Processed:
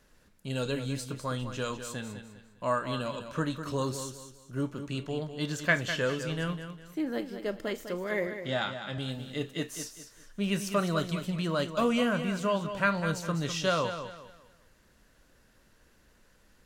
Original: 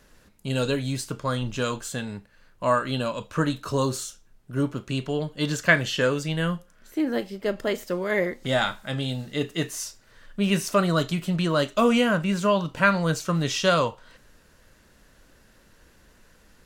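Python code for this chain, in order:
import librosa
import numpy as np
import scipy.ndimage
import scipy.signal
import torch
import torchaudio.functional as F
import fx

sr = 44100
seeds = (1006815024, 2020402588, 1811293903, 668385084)

p1 = fx.cheby1_bandpass(x, sr, low_hz=120.0, high_hz=5000.0, order=2, at=(8.27, 8.98))
p2 = p1 + fx.echo_feedback(p1, sr, ms=202, feedback_pct=32, wet_db=-9.5, dry=0)
y = p2 * 10.0 ** (-7.0 / 20.0)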